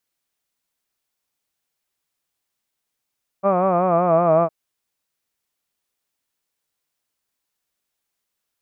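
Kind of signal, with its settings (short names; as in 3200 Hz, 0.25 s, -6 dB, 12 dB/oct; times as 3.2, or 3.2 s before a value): formant-synthesis vowel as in hud, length 1.06 s, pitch 191 Hz, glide -3 st, vibrato depth 0.85 st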